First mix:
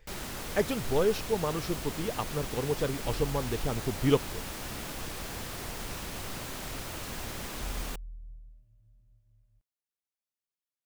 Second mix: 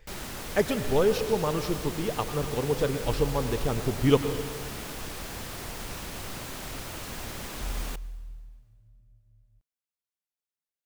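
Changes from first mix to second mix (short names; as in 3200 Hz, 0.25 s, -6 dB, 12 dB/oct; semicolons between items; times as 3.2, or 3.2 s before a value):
second sound: add low shelf 460 Hz +4.5 dB; reverb: on, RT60 1.8 s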